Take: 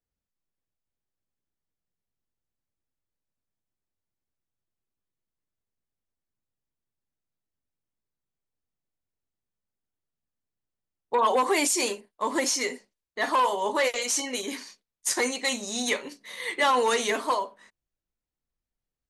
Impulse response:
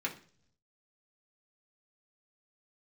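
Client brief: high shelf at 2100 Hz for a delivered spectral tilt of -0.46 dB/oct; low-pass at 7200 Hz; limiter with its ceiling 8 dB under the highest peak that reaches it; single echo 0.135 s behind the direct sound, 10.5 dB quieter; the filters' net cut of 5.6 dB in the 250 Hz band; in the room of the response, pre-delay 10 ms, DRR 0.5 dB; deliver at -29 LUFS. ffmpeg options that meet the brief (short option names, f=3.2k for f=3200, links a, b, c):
-filter_complex "[0:a]lowpass=7.2k,equalizer=f=250:t=o:g=-7,highshelf=f=2.1k:g=-3.5,alimiter=limit=-23dB:level=0:latency=1,aecho=1:1:135:0.299,asplit=2[a][b];[1:a]atrim=start_sample=2205,adelay=10[c];[b][c]afir=irnorm=-1:irlink=0,volume=-4.5dB[d];[a][d]amix=inputs=2:normalize=0,volume=1dB"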